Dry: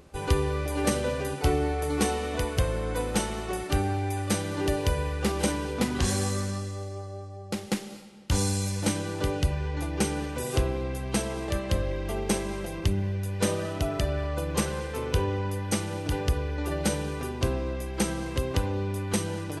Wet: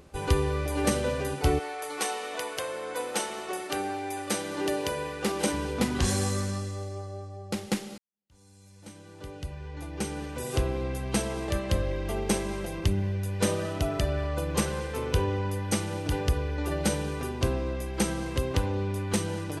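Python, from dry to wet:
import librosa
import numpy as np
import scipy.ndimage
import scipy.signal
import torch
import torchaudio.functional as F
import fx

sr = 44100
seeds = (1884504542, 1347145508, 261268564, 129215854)

y = fx.highpass(x, sr, hz=fx.line((1.58, 740.0), (5.52, 180.0)), slope=12, at=(1.58, 5.52), fade=0.02)
y = fx.doppler_dist(y, sr, depth_ms=0.11, at=(18.49, 19.29))
y = fx.edit(y, sr, fx.fade_in_span(start_s=7.98, length_s=2.86, curve='qua'), tone=tone)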